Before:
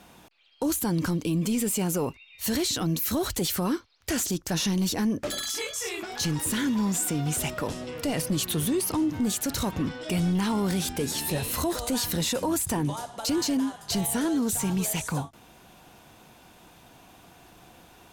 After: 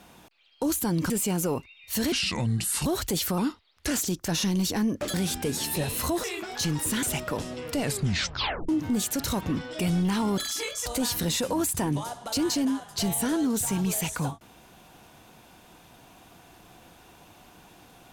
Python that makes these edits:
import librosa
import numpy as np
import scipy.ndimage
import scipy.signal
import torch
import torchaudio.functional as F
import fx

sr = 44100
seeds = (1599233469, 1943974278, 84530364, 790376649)

y = fx.edit(x, sr, fx.cut(start_s=1.1, length_s=0.51),
    fx.speed_span(start_s=2.63, length_s=0.51, speed=0.69),
    fx.speed_span(start_s=3.66, length_s=0.47, speed=0.89),
    fx.swap(start_s=5.36, length_s=0.48, other_s=10.68, other_length_s=1.1),
    fx.cut(start_s=6.63, length_s=0.7),
    fx.tape_stop(start_s=8.1, length_s=0.89), tone=tone)